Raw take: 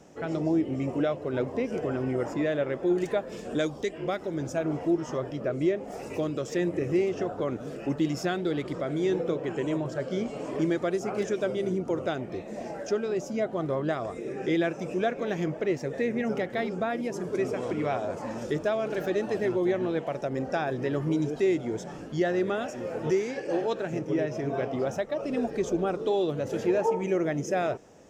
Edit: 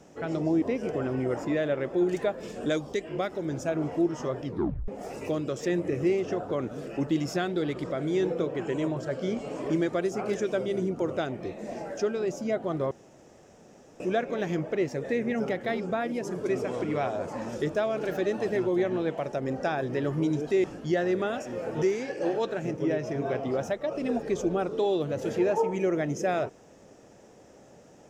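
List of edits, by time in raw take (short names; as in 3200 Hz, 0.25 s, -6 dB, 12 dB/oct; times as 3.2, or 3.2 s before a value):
0.62–1.51 cut
5.34 tape stop 0.43 s
13.8–14.89 room tone
21.53–21.92 cut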